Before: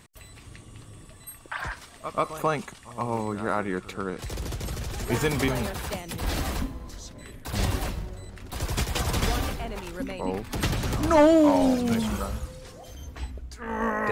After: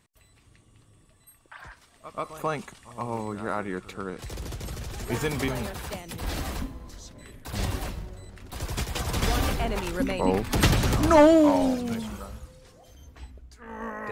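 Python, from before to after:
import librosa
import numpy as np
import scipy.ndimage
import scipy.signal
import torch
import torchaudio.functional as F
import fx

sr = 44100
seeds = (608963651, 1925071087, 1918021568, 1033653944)

y = fx.gain(x, sr, db=fx.line((1.77, -12.0), (2.52, -3.0), (9.07, -3.0), (9.62, 6.0), (10.66, 6.0), (11.54, -1.0), (12.16, -8.5)))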